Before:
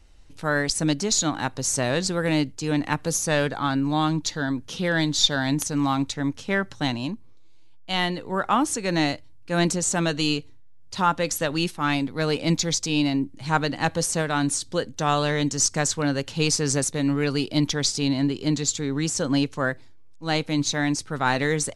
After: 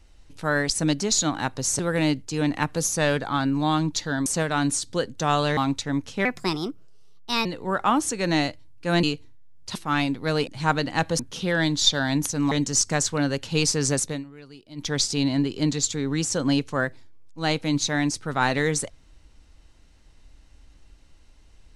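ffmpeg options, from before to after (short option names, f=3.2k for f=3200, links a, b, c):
-filter_complex "[0:a]asplit=13[a][b][c][d][e][f][g][h][i][j][k][l][m];[a]atrim=end=1.792[n];[b]atrim=start=2.088:end=4.562[o];[c]atrim=start=14.048:end=15.362[p];[d]atrim=start=5.878:end=6.564[q];[e]atrim=start=6.56:end=8.1,asetpts=PTS-STARTPTS,asetrate=56448,aresample=44100[r];[f]atrim=start=8.096:end=9.682[s];[g]atrim=start=10.278:end=11.002[t];[h]atrim=start=11.678:end=12.402[u];[i]atrim=start=13.328:end=14.052[v];[j]atrim=start=4.558:end=5.882[w];[k]atrim=start=15.358:end=17.09,asetpts=PTS-STARTPTS,afade=t=out:st=1.562:d=0.17:silence=0.0891251[x];[l]atrim=start=17.09:end=17.6,asetpts=PTS-STARTPTS,volume=-21dB[y];[m]atrim=start=17.6,asetpts=PTS-STARTPTS,afade=t=in:d=0.17:silence=0.0891251[z];[n][o]acrossfade=d=0.004:c1=hsin:c2=hsin[aa];[aa][p]acrossfade=d=0.004:c1=hsin:c2=hsin[ab];[ab][q]acrossfade=d=0.004:c1=hsin:c2=hsin[ac];[ac][r]acrossfade=d=0.004:c1=hsin:c2=hsin[ad];[ad][s]acrossfade=d=0.004:c1=hsin:c2=hsin[ae];[ae][t]acrossfade=d=0.004:c1=hsin:c2=hsin[af];[af][u]acrossfade=d=0.004:c1=hsin:c2=hsin[ag];[ag][v]acrossfade=d=0.004:c1=hsin:c2=hsin[ah];[ah][w]acrossfade=d=0.004:c1=hsin:c2=hsin[ai];[x][y][z]concat=n=3:v=0:a=1[aj];[ai][aj]acrossfade=d=0.004:c1=hsin:c2=hsin"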